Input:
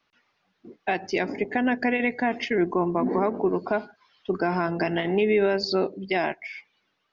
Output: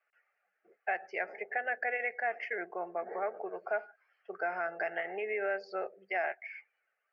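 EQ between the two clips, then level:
band-pass filter 740–2,000 Hz
phaser with its sweep stopped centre 1,000 Hz, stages 6
−1.5 dB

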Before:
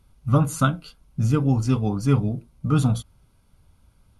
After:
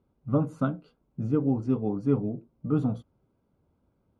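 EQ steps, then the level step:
resonant band-pass 370 Hz, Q 1.2
0.0 dB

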